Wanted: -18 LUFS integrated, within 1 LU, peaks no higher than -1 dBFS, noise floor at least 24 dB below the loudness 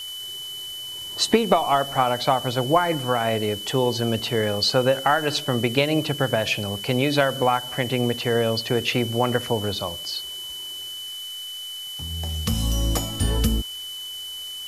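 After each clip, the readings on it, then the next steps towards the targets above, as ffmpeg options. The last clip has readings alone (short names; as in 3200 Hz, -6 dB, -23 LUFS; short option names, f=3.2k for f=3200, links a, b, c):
steady tone 3000 Hz; tone level -32 dBFS; noise floor -34 dBFS; noise floor target -48 dBFS; loudness -23.5 LUFS; peak -5.0 dBFS; loudness target -18.0 LUFS
-> -af "bandreject=f=3k:w=30"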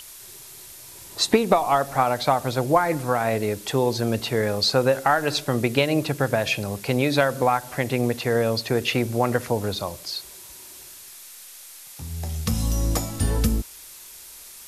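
steady tone none; noise floor -43 dBFS; noise floor target -47 dBFS
-> -af "afftdn=nr=6:nf=-43"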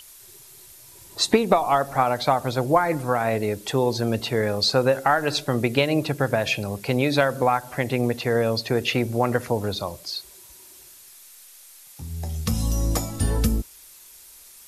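noise floor -48 dBFS; loudness -23.0 LUFS; peak -5.0 dBFS; loudness target -18.0 LUFS
-> -af "volume=5dB,alimiter=limit=-1dB:level=0:latency=1"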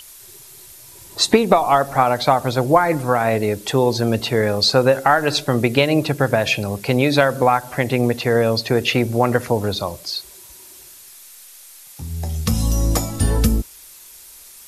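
loudness -18.0 LUFS; peak -1.0 dBFS; noise floor -43 dBFS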